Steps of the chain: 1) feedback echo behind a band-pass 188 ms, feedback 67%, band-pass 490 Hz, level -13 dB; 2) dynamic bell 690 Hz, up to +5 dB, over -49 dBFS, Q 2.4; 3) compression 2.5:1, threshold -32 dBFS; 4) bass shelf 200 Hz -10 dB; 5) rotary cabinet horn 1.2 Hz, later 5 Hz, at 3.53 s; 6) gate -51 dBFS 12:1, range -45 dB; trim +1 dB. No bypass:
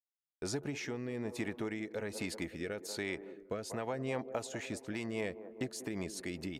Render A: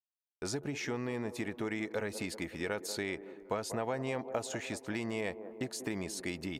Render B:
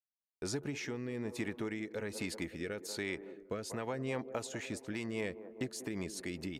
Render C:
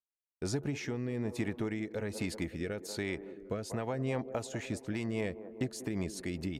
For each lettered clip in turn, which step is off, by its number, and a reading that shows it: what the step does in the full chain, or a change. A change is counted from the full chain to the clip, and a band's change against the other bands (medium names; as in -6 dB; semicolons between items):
5, 1 kHz band +2.0 dB; 2, 1 kHz band -1.5 dB; 4, 125 Hz band +6.5 dB